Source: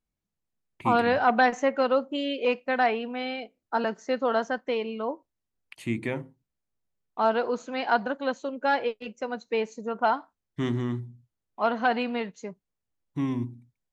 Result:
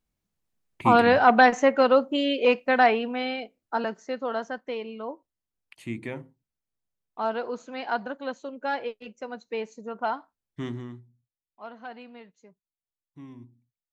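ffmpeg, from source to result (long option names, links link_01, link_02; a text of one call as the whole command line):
ffmpeg -i in.wav -af "volume=4.5dB,afade=type=out:start_time=2.85:duration=1.29:silence=0.354813,afade=type=out:start_time=10.6:duration=0.44:silence=0.251189" out.wav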